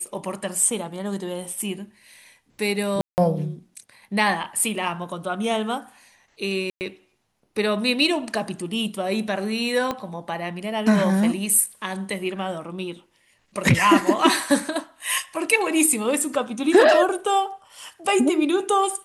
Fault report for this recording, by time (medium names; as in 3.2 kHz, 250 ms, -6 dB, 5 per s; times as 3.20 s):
3.01–3.18 s: dropout 169 ms
6.70–6.81 s: dropout 109 ms
9.91 s: pop -12 dBFS